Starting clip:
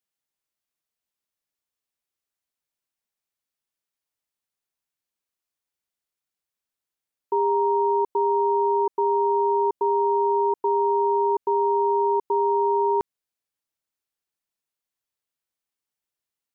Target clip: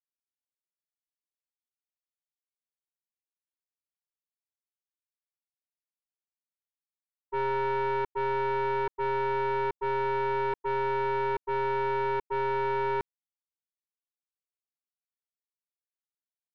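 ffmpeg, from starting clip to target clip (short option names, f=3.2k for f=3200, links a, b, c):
-af "agate=range=-33dB:threshold=-16dB:ratio=3:detection=peak,aeval=exprs='0.106*(cos(1*acos(clip(val(0)/0.106,-1,1)))-cos(1*PI/2))+0.0422*(cos(2*acos(clip(val(0)/0.106,-1,1)))-cos(2*PI/2))':c=same,asoftclip=type=tanh:threshold=-24.5dB,volume=1.5dB"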